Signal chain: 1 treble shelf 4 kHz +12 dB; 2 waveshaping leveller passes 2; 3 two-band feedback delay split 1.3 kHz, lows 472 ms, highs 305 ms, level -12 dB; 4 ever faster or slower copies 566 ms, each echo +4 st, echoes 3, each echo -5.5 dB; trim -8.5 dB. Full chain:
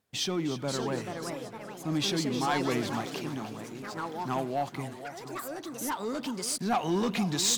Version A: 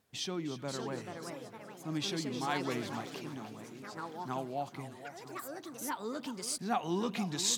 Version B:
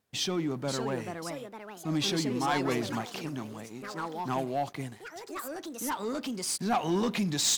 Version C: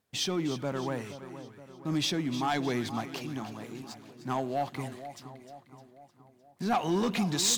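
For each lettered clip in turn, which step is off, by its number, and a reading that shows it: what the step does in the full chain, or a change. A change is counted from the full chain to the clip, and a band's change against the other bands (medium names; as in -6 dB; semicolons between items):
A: 2, crest factor change +4.5 dB; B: 3, momentary loudness spread change +1 LU; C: 4, momentary loudness spread change +7 LU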